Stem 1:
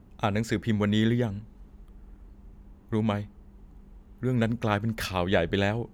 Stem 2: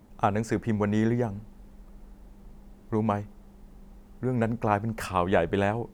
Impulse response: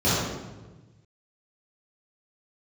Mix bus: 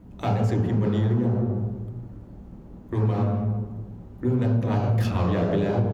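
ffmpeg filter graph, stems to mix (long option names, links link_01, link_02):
-filter_complex "[0:a]volume=0.5dB[link_01];[1:a]deesser=0.9,highshelf=frequency=2900:gain=-11,asoftclip=type=hard:threshold=-24dB,volume=-1,adelay=1.6,volume=-7dB,asplit=3[link_02][link_03][link_04];[link_03]volume=-7dB[link_05];[link_04]apad=whole_len=261584[link_06];[link_01][link_06]sidechaincompress=threshold=-39dB:ratio=8:attack=8.5:release=173[link_07];[2:a]atrim=start_sample=2205[link_08];[link_05][link_08]afir=irnorm=-1:irlink=0[link_09];[link_07][link_02][link_09]amix=inputs=3:normalize=0,acompressor=threshold=-19dB:ratio=6"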